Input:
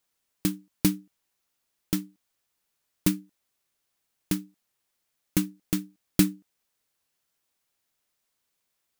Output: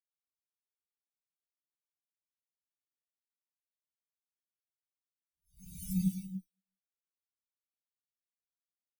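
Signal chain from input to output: amplifier tone stack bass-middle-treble 10-0-10; hard clipper -25.5 dBFS, distortion -8 dB; Paulstretch 6.1×, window 0.25 s, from 2.10 s; spectral contrast expander 4:1; trim +2.5 dB

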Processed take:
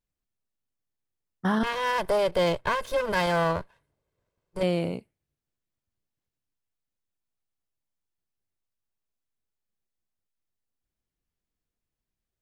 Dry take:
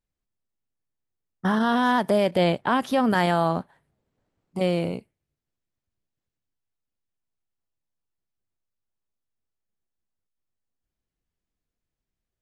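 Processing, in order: 1.63–4.63 s: comb filter that takes the minimum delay 1.9 ms; trim -2 dB

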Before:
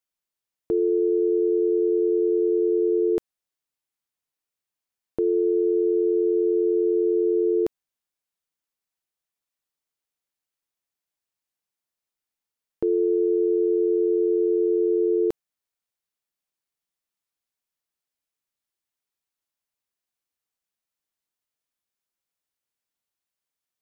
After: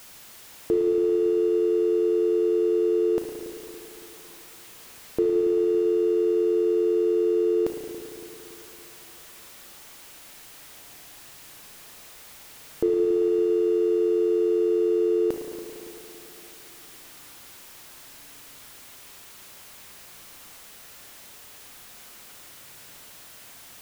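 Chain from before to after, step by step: jump at every zero crossing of -40.5 dBFS; spring tank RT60 3.4 s, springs 35/56 ms, chirp 55 ms, DRR 2 dB; trim +1 dB

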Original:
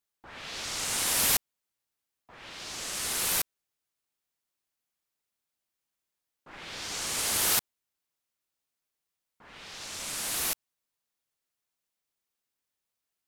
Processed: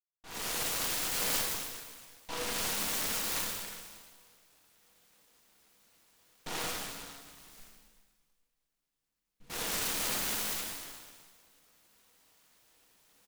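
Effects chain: comb filter that takes the minimum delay 4.2 ms; recorder AGC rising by 45 dB/s; expander -56 dBFS; 6.70–9.50 s: amplifier tone stack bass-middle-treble 10-0-1; comb 6.3 ms, depth 73%; dynamic bell 5.4 kHz, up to +7 dB, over -46 dBFS, Q 1.2; feedback comb 70 Hz, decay 0.99 s, harmonics all, mix 80%; plate-style reverb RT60 1.7 s, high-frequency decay 1×, DRR -4.5 dB; delay time shaken by noise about 2.1 kHz, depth 0.15 ms; trim -4 dB

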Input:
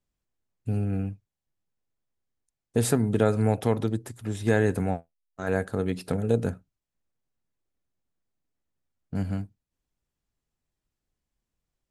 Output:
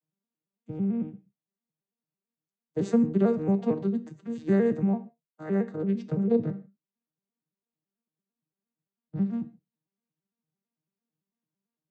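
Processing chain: vocoder on a broken chord major triad, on D#3, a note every 112 ms; 6.24–9.27 s: low-pass 5.1 kHz 24 dB/octave; gated-style reverb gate 180 ms falling, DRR 11.5 dB

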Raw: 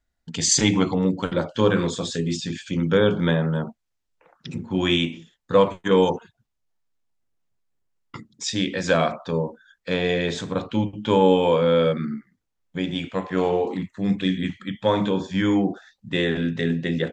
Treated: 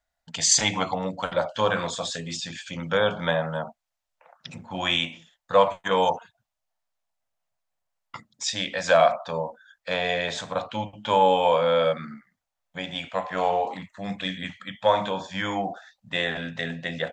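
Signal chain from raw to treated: resonant low shelf 490 Hz -9 dB, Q 3

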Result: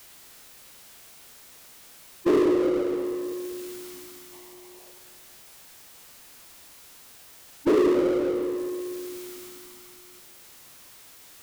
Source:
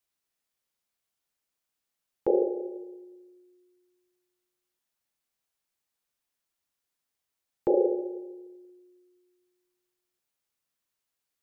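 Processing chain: time-frequency box 4.32–4.92 s, 350–1200 Hz +9 dB; formant shift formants -4 st; power-law waveshaper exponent 0.5; on a send: bucket-brigade echo 191 ms, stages 1024, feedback 53%, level -10 dB

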